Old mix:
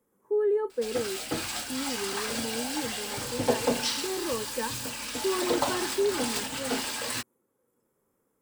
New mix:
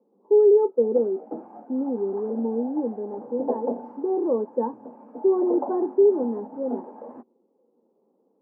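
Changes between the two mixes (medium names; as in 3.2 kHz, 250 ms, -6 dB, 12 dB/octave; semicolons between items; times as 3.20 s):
speech +9.5 dB; master: add elliptic band-pass 210–840 Hz, stop band 60 dB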